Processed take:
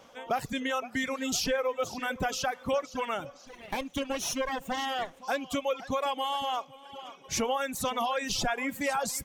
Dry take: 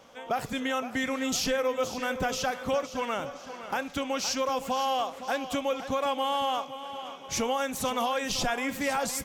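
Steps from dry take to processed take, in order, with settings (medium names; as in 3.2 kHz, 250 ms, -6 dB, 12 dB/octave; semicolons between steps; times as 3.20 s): 3.47–5.21 s: comb filter that takes the minimum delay 0.31 ms; reverb removal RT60 1.9 s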